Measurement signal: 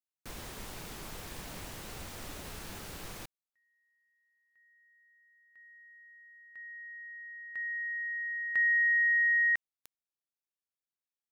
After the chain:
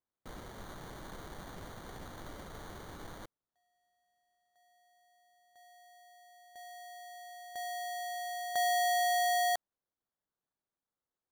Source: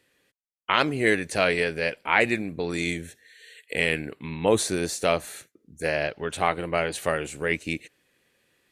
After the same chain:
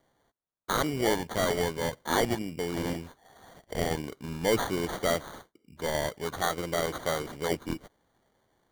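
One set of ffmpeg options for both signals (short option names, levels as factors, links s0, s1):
-af "acrusher=samples=17:mix=1:aa=0.000001,asoftclip=type=tanh:threshold=0.251,volume=0.708"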